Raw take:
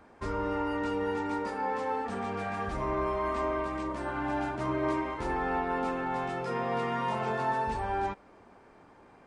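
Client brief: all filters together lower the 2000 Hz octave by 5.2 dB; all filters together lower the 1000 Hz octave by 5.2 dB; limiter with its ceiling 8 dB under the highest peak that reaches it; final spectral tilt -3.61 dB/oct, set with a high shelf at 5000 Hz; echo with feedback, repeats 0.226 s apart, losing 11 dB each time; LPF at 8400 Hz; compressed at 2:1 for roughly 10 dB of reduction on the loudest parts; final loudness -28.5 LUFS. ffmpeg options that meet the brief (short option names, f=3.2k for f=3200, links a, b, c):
-af "lowpass=8.4k,equalizer=f=1k:t=o:g=-5.5,equalizer=f=2k:t=o:g=-4,highshelf=f=5k:g=-4,acompressor=threshold=-47dB:ratio=2,alimiter=level_in=14dB:limit=-24dB:level=0:latency=1,volume=-14dB,aecho=1:1:226|452|678:0.282|0.0789|0.0221,volume=18dB"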